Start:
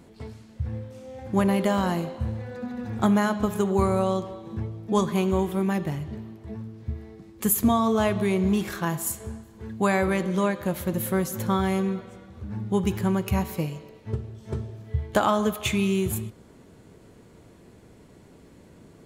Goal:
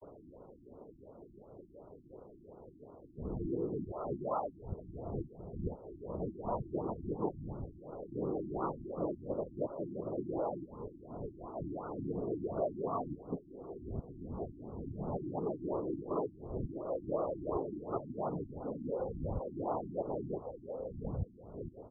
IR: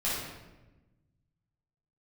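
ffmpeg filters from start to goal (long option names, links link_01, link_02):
-filter_complex "[0:a]areverse,equalizer=frequency=590:width_type=o:width=2.1:gain=12,bandreject=frequency=170.1:width_type=h:width=4,bandreject=frequency=340.2:width_type=h:width=4,bandreject=frequency=510.3:width_type=h:width=4,bandreject=frequency=680.4:width_type=h:width=4,bandreject=frequency=850.5:width_type=h:width=4,bandreject=frequency=1020.6:width_type=h:width=4,bandreject=frequency=1190.7:width_type=h:width=4,bandreject=frequency=1360.8:width_type=h:width=4,bandreject=frequency=1530.9:width_type=h:width=4,bandreject=frequency=1701:width_type=h:width=4,bandreject=frequency=1871.1:width_type=h:width=4,bandreject=frequency=2041.2:width_type=h:width=4,bandreject=frequency=2211.3:width_type=h:width=4,bandreject=frequency=2381.4:width_type=h:width=4,bandreject=frequency=2551.5:width_type=h:width=4,bandreject=frequency=2721.6:width_type=h:width=4,bandreject=frequency=2891.7:width_type=h:width=4,bandreject=frequency=3061.8:width_type=h:width=4,bandreject=frequency=3231.9:width_type=h:width=4,bandreject=frequency=3402:width_type=h:width=4,bandreject=frequency=3572.1:width_type=h:width=4,bandreject=frequency=3742.2:width_type=h:width=4,bandreject=frequency=3912.3:width_type=h:width=4,bandreject=frequency=4082.4:width_type=h:width=4,bandreject=frequency=4252.5:width_type=h:width=4,bandreject=frequency=4422.6:width_type=h:width=4,bandreject=frequency=4592.7:width_type=h:width=4,bandreject=frequency=4762.8:width_type=h:width=4,bandreject=frequency=4932.9:width_type=h:width=4,bandreject=frequency=5103:width_type=h:width=4,bandreject=frequency=5273.1:width_type=h:width=4,acompressor=threshold=-24dB:ratio=6,asplit=2[link_01][link_02];[link_02]adelay=671,lowpass=frequency=1700:poles=1,volume=-18.5dB,asplit=2[link_03][link_04];[link_04]adelay=671,lowpass=frequency=1700:poles=1,volume=0.33,asplit=2[link_05][link_06];[link_06]adelay=671,lowpass=frequency=1700:poles=1,volume=0.33[link_07];[link_01][link_03][link_05][link_07]amix=inputs=4:normalize=0,atempo=0.87,equalizer=frequency=190:width_type=o:width=0.99:gain=-6.5,afftfilt=real='hypot(re,im)*cos(2*PI*random(0))':imag='hypot(re,im)*sin(2*PI*random(1))':win_size=512:overlap=0.75,afftfilt=real='re*lt(b*sr/1024,340*pow(1500/340,0.5+0.5*sin(2*PI*2.8*pts/sr)))':imag='im*lt(b*sr/1024,340*pow(1500/340,0.5+0.5*sin(2*PI*2.8*pts/sr)))':win_size=1024:overlap=0.75,volume=-1dB"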